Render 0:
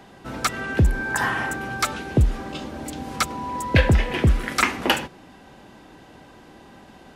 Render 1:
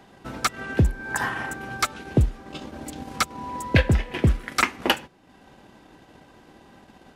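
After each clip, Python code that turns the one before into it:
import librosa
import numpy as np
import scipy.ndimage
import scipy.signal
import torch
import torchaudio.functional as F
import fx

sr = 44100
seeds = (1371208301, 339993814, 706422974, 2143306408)

y = fx.transient(x, sr, attack_db=4, sustain_db=-7)
y = y * 10.0 ** (-4.0 / 20.0)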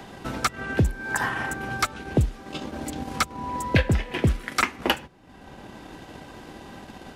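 y = fx.band_squash(x, sr, depth_pct=40)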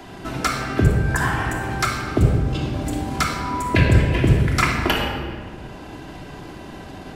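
y = fx.room_shoebox(x, sr, seeds[0], volume_m3=2600.0, walls='mixed', distance_m=3.1)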